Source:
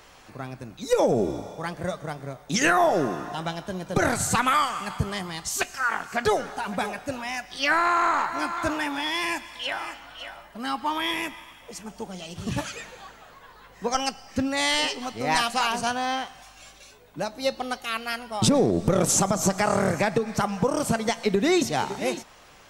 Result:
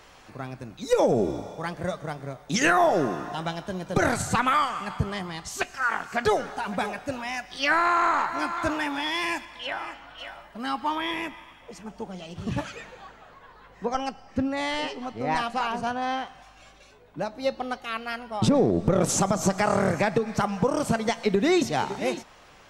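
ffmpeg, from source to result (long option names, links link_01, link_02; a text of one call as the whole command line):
ffmpeg -i in.wav -af "asetnsamples=nb_out_samples=441:pad=0,asendcmd='4.22 lowpass f 3100;5.82 lowpass f 6000;9.45 lowpass f 2400;10.18 lowpass f 4800;10.95 lowpass f 2300;13.85 lowpass f 1200;16.02 lowpass f 2100;19.02 lowpass f 4900',lowpass=frequency=7300:poles=1" out.wav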